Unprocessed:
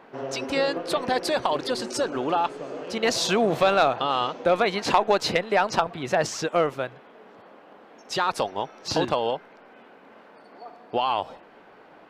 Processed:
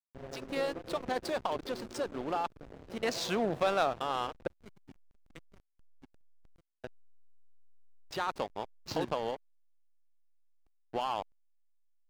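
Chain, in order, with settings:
0:04.47–0:06.84: formant filter i
slack as between gear wheels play −25 dBFS
level −8.5 dB

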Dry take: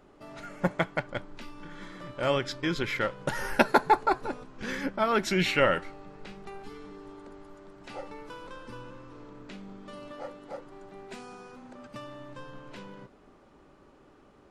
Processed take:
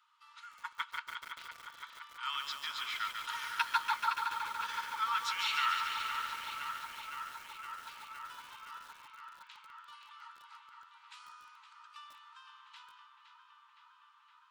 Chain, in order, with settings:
Chebyshev high-pass with heavy ripple 900 Hz, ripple 9 dB
on a send: feedback echo with a low-pass in the loop 514 ms, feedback 82%, low-pass 4,400 Hz, level −7.5 dB
on the sum: feedback echo at a low word length 143 ms, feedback 80%, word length 8 bits, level −5.5 dB
level −1.5 dB

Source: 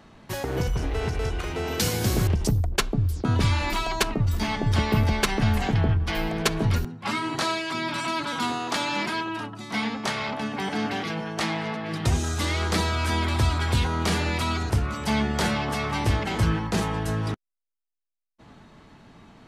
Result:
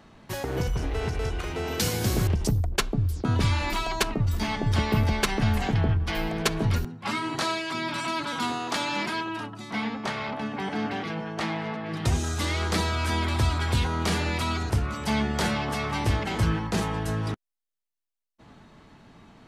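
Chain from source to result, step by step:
0:09.70–0:11.97: high-shelf EQ 4,600 Hz −10.5 dB
level −1.5 dB

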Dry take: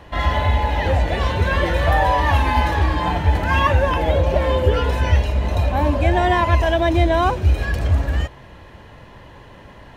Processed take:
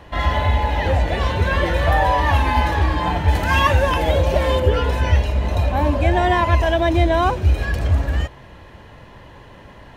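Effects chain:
0:03.28–0:04.60: high-shelf EQ 3,800 Hz +9.5 dB

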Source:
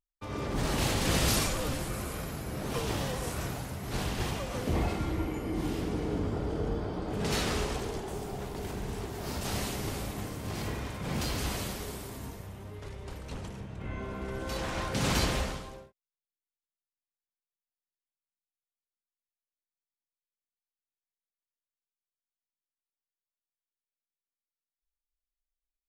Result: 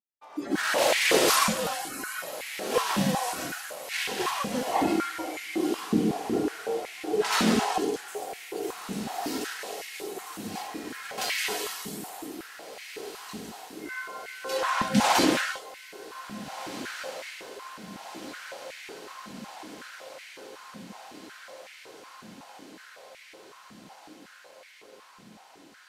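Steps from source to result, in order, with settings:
noise reduction from a noise print of the clip's start 16 dB
0:09.41–0:11.18: downward compressor, threshold −42 dBFS, peak gain reduction 11.5 dB
feedback delay with all-pass diffusion 1,769 ms, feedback 72%, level −12.5 dB
high-pass on a step sequencer 5.4 Hz 210–2,100 Hz
level +5 dB

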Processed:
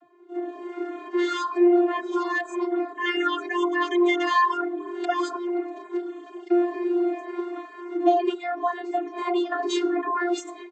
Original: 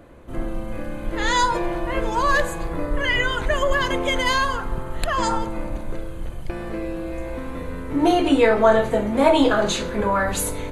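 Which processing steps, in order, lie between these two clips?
downward compressor 4 to 1, threshold −21 dBFS, peak gain reduction 9.5 dB
0:07.52–0:09.62: low-shelf EQ 250 Hz −9.5 dB
channel vocoder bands 32, saw 351 Hz
automatic gain control gain up to 11 dB
reverb reduction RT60 0.59 s
barber-pole flanger 4 ms −2.1 Hz
level −2 dB

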